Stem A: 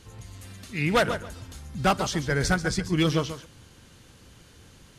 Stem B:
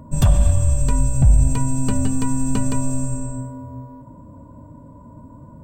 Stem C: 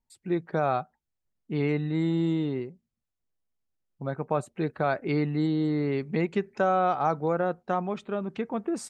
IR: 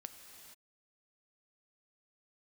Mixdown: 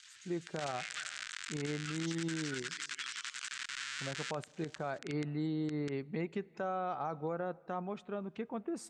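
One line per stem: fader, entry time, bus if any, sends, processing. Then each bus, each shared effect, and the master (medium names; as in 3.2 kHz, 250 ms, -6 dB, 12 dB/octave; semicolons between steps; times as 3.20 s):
-1.5 dB, 0.00 s, bus A, no send, word length cut 8-bit, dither none; auto duck -6 dB, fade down 0.45 s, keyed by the third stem
-1.0 dB, 0.45 s, bus A, no send, Schmitt trigger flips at -32 dBFS
-10.0 dB, 0.00 s, no bus, send -13.5 dB, none
bus A: 0.0 dB, elliptic band-pass 1.5–7.8 kHz, stop band 40 dB; compression 6:1, threshold -36 dBFS, peak gain reduction 10.5 dB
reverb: on, pre-delay 3 ms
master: peak limiter -27 dBFS, peak gain reduction 8.5 dB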